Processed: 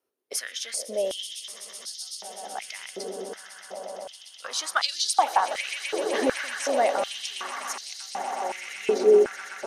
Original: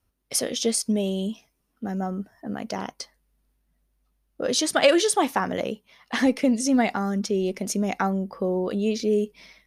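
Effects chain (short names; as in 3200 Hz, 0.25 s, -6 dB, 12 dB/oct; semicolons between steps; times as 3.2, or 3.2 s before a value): swelling echo 0.126 s, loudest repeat 8, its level -14.5 dB; stepped high-pass 2.7 Hz 410–4400 Hz; gain -5.5 dB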